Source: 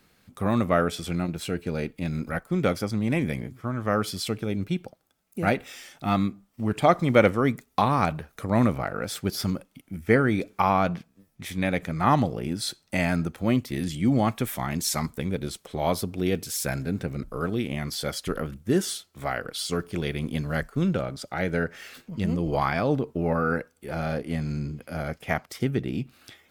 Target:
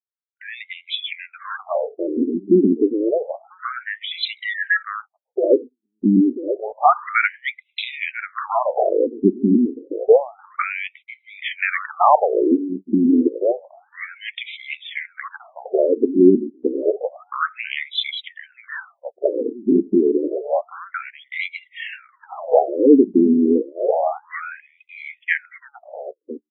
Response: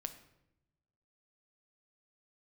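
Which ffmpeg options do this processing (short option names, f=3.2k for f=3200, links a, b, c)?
-filter_complex "[0:a]asettb=1/sr,asplit=3[a][b][c];[a]atrim=end=4.254[d];[b]atrim=start=4.25:end=4.83,asetpts=PTS-STARTPTS,afade=t=in:d=0.004:c=qsin,afade=t=out:st=0.576:d=0.004:c=qsin,aeval=exprs='val(0)*sin(2*PI*1500*n/s)':c=same[e];[c]atrim=start=4.826[f];[d][e]acrossfade=d=0.004:c1=hsin:c2=qsin[g];[g][f]acrossfade=d=0.004:c1=qsin:c2=hsin,afftdn=nr=18:nf=-45,equalizer=f=320:t=o:w=1.7:g=7,asplit=2[h][i];[i]adelay=989,lowpass=f=1.4k:p=1,volume=-12dB,asplit=2[j][k];[k]adelay=989,lowpass=f=1.4k:p=1,volume=0.18[l];[j][l]amix=inputs=2:normalize=0[m];[h][m]amix=inputs=2:normalize=0,apsyclip=11dB,asplit=2[n][o];[o]acompressor=threshold=-19dB:ratio=12,volume=2dB[p];[n][p]amix=inputs=2:normalize=0,agate=range=-41dB:threshold=-18dB:ratio=16:detection=peak,highshelf=f=5.1k:g=7.5,afftfilt=real='re*between(b*sr/1024,280*pow(2900/280,0.5+0.5*sin(2*PI*0.29*pts/sr))/1.41,280*pow(2900/280,0.5+0.5*sin(2*PI*0.29*pts/sr))*1.41)':imag='im*between(b*sr/1024,280*pow(2900/280,0.5+0.5*sin(2*PI*0.29*pts/sr))/1.41,280*pow(2900/280,0.5+0.5*sin(2*PI*0.29*pts/sr))*1.41)':win_size=1024:overlap=0.75,volume=-2dB"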